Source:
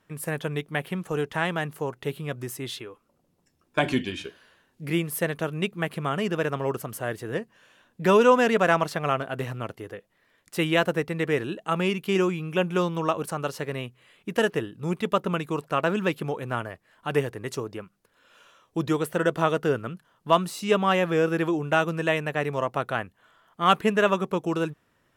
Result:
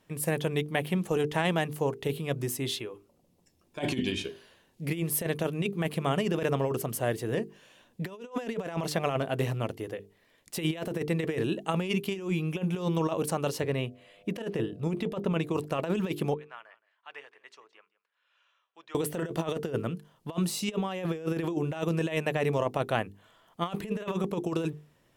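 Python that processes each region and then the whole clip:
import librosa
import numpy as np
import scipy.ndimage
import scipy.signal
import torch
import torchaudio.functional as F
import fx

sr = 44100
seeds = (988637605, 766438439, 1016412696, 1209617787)

y = fx.high_shelf(x, sr, hz=5500.0, db=-9.5, at=(13.6, 15.53), fade=0.02)
y = fx.dmg_buzz(y, sr, base_hz=100.0, harmonics=7, level_db=-44.0, tilt_db=-9, odd_only=False, at=(13.6, 15.53), fade=0.02)
y = fx.chain(y, sr, fx.ladder_bandpass(hz=1800.0, resonance_pct=20),
    fx.echo_single(ms=169, db=-20.0), at=(16.34, 18.95))
y = fx.peak_eq(y, sr, hz=1400.0, db=-8.5, octaves=0.9)
y = fx.hum_notches(y, sr, base_hz=50, count=9)
y = fx.over_compress(y, sr, threshold_db=-28.0, ratio=-0.5)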